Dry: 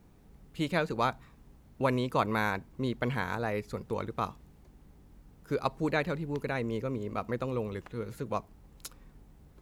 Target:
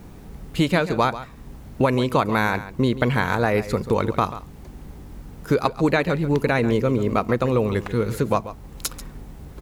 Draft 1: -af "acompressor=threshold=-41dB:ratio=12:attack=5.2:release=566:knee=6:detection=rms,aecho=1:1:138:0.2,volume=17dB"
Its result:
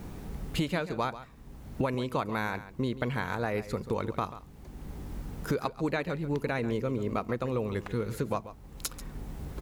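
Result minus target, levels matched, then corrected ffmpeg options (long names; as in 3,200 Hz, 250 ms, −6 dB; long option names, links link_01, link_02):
downward compressor: peak gain reduction +11 dB
-af "acompressor=threshold=-29dB:ratio=12:attack=5.2:release=566:knee=6:detection=rms,aecho=1:1:138:0.2,volume=17dB"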